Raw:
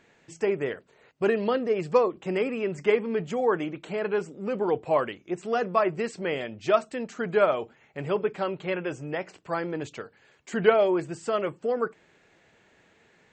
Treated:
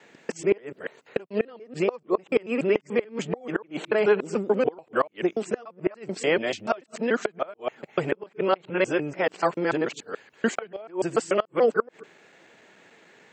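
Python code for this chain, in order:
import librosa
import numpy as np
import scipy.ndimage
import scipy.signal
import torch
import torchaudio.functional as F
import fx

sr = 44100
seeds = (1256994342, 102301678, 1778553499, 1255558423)

y = fx.local_reverse(x, sr, ms=145.0)
y = scipy.signal.sosfilt(scipy.signal.butter(2, 200.0, 'highpass', fs=sr, output='sos'), y)
y = fx.gate_flip(y, sr, shuts_db=-17.0, range_db=-27)
y = F.gain(torch.from_numpy(y), 7.0).numpy()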